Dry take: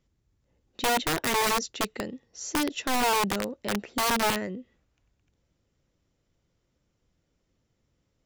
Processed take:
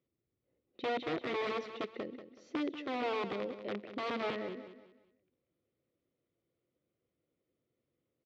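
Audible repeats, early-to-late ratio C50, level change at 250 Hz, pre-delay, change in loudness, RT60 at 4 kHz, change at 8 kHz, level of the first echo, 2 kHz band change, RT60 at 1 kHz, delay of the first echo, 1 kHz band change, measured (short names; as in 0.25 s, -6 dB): 3, none, -8.0 dB, none, -11.0 dB, none, under -30 dB, -11.0 dB, -12.0 dB, none, 0.187 s, -12.5 dB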